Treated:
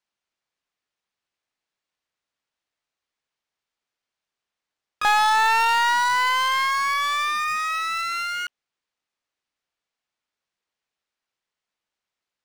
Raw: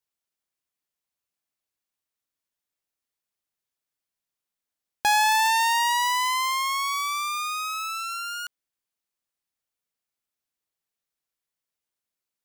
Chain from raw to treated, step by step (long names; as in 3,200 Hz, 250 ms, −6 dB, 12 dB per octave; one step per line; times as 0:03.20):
pitch-shifted copies added +7 semitones −7 dB, +12 semitones −17 dB
mid-hump overdrive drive 11 dB, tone 3,900 Hz, clips at −11 dBFS
linearly interpolated sample-rate reduction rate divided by 3×